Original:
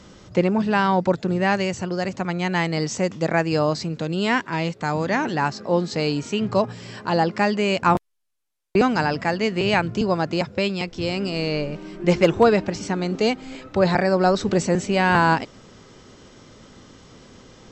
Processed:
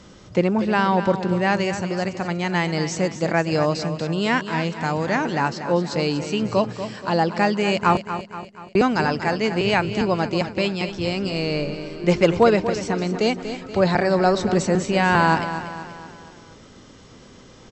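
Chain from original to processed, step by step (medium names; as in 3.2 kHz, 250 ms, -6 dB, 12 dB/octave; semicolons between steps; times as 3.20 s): on a send: feedback delay 239 ms, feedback 50%, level -10.5 dB; on the sum: resampled via 22.05 kHz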